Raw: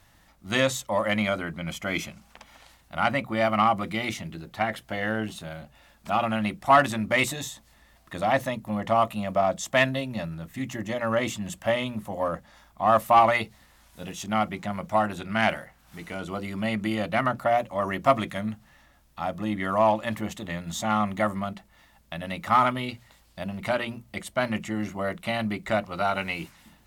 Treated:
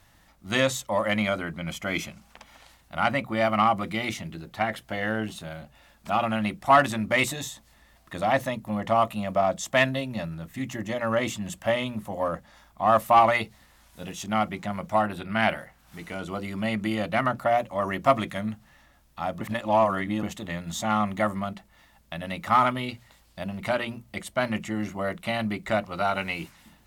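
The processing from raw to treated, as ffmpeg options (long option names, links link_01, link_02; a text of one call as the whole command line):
ffmpeg -i in.wav -filter_complex "[0:a]asettb=1/sr,asplit=3[link_01][link_02][link_03];[link_01]atrim=end=15.014[link_04];[link_02]atrim=start=15.01:end=15.59,asetpts=PTS-STARTPTS,afade=type=in:duration=0.004:curve=qsin,afade=type=out:start_time=0.576:duration=0.004:curve=qsin,equalizer=frequency=6600:width=3.1:gain=-13.5[link_05];[link_03]atrim=start=15.586[link_06];[link_04][link_05]acrossfade=duration=0.004:curve1=hsin:curve2=qsin[link_07];[link_07][link_06]acrossfade=duration=0.004:curve1=qsin:curve2=hsin,asplit=3[link_08][link_09][link_10];[link_08]atrim=end=19.412[link_11];[link_09]atrim=start=19.408:end=20.232,asetpts=PTS-STARTPTS,areverse[link_12];[link_10]atrim=start=20.228[link_13];[link_11][link_12]acrossfade=duration=0.004:curve1=hsin:curve2=hsin[link_14];[link_14][link_13]acrossfade=duration=0.004:curve1=hsin:curve2=hsin" out.wav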